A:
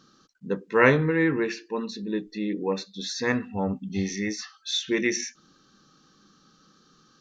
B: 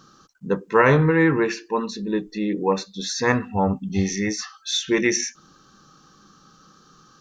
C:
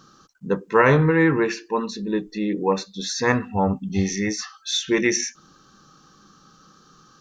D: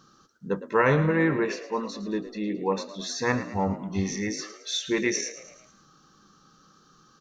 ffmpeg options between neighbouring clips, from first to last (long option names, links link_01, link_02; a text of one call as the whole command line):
ffmpeg -i in.wav -af "equalizer=frequency=250:width_type=o:width=1:gain=-6,equalizer=frequency=500:width_type=o:width=1:gain=-3,equalizer=frequency=1000:width_type=o:width=1:gain=3,equalizer=frequency=2000:width_type=o:width=1:gain=-5,equalizer=frequency=4000:width_type=o:width=1:gain=-6,alimiter=level_in=13dB:limit=-1dB:release=50:level=0:latency=1,volume=-3.5dB" out.wav
ffmpeg -i in.wav -af anull out.wav
ffmpeg -i in.wav -filter_complex "[0:a]asplit=6[link_01][link_02][link_03][link_04][link_05][link_06];[link_02]adelay=110,afreqshift=54,volume=-14dB[link_07];[link_03]adelay=220,afreqshift=108,volume=-19.5dB[link_08];[link_04]adelay=330,afreqshift=162,volume=-25dB[link_09];[link_05]adelay=440,afreqshift=216,volume=-30.5dB[link_10];[link_06]adelay=550,afreqshift=270,volume=-36.1dB[link_11];[link_01][link_07][link_08][link_09][link_10][link_11]amix=inputs=6:normalize=0,volume=-5.5dB" out.wav